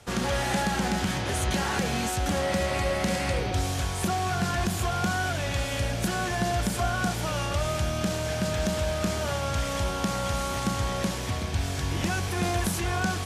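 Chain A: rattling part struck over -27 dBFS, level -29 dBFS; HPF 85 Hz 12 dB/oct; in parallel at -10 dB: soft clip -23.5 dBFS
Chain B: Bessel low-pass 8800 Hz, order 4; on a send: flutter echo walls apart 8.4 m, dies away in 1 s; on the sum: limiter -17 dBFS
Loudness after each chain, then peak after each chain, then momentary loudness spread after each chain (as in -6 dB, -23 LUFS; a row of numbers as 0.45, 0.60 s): -26.5, -26.5 LUFS; -12.5, -17.0 dBFS; 2, 2 LU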